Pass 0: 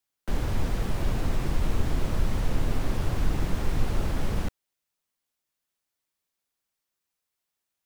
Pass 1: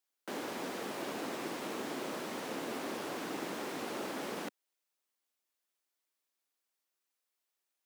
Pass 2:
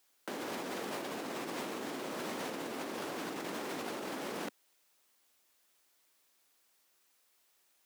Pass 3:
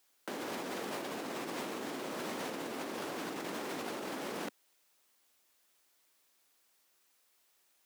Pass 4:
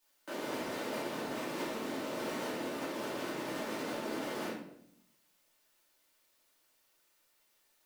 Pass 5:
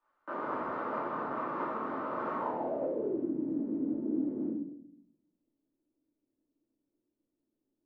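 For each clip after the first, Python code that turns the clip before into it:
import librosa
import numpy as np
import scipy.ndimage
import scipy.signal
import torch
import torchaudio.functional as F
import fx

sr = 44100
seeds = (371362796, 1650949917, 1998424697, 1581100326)

y1 = scipy.signal.sosfilt(scipy.signal.butter(4, 260.0, 'highpass', fs=sr, output='sos'), x)
y1 = F.gain(torch.from_numpy(y1), -2.5).numpy()
y2 = fx.over_compress(y1, sr, threshold_db=-47.0, ratio=-1.0)
y2 = F.gain(torch.from_numpy(y2), 7.0).numpy()
y3 = y2
y4 = fx.room_shoebox(y3, sr, seeds[0], volume_m3=140.0, walls='mixed', distance_m=2.6)
y4 = F.gain(torch.from_numpy(y4), -8.5).numpy()
y5 = fx.filter_sweep_lowpass(y4, sr, from_hz=1200.0, to_hz=290.0, start_s=2.35, end_s=3.31, q=4.9)
y5 = F.gain(torch.from_numpy(y5), -1.0).numpy()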